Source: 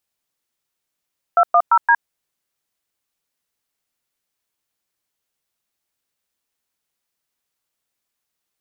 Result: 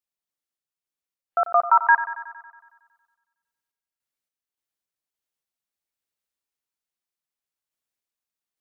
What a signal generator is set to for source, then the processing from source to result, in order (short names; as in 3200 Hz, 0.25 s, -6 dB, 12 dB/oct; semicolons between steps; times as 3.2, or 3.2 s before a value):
DTMF "210D", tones 63 ms, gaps 0.109 s, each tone -12 dBFS
spectral noise reduction 9 dB; random-step tremolo; thinning echo 92 ms, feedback 66%, high-pass 280 Hz, level -13 dB